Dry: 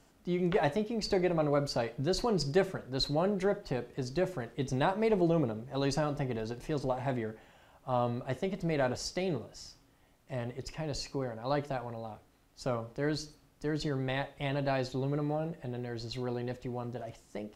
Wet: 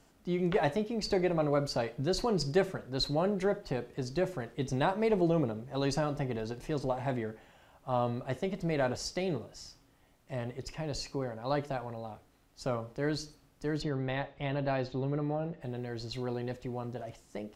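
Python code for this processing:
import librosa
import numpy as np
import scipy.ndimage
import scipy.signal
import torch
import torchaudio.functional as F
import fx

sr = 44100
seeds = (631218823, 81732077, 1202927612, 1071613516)

y = fx.air_absorb(x, sr, metres=150.0, at=(13.81, 15.6), fade=0.02)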